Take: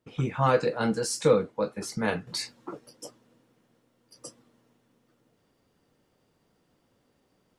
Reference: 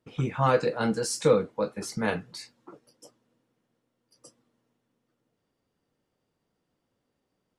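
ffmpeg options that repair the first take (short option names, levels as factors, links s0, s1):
-af "asetnsamples=n=441:p=0,asendcmd='2.27 volume volume -9dB',volume=1"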